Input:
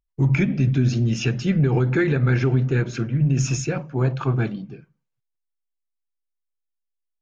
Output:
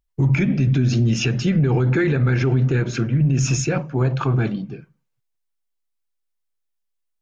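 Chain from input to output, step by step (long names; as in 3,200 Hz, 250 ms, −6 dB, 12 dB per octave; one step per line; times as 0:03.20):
brickwall limiter −16 dBFS, peak gain reduction 6 dB
level +5 dB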